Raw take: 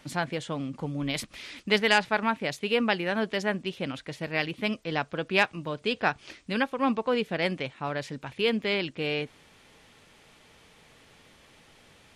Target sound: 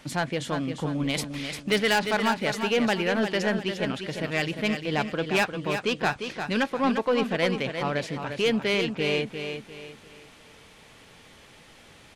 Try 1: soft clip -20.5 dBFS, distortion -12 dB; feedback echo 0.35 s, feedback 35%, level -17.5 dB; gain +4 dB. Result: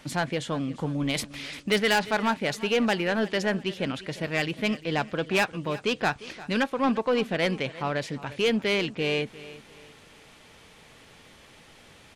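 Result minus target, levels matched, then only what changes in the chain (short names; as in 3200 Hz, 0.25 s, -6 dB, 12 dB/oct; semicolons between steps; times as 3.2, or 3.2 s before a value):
echo-to-direct -10 dB
change: feedback echo 0.35 s, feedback 35%, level -7.5 dB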